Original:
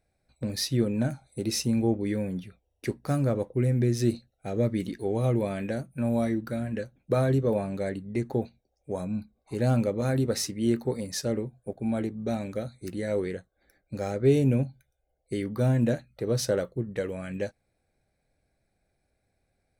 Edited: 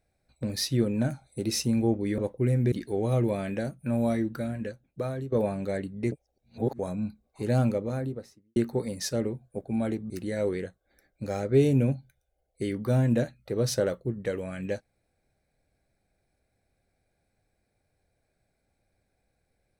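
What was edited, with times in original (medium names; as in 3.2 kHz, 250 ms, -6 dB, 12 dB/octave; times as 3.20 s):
2.18–3.34 s: delete
3.88–4.84 s: delete
6.46–7.44 s: fade out, to -14 dB
8.24–8.91 s: reverse
9.63–10.68 s: studio fade out
12.22–12.81 s: delete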